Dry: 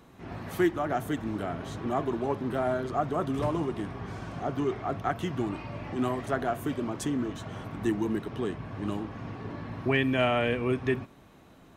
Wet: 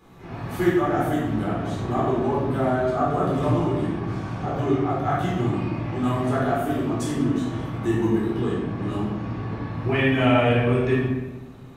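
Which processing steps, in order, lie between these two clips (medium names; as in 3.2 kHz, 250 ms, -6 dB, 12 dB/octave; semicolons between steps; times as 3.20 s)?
simulated room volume 540 m³, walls mixed, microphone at 4 m; trim -4 dB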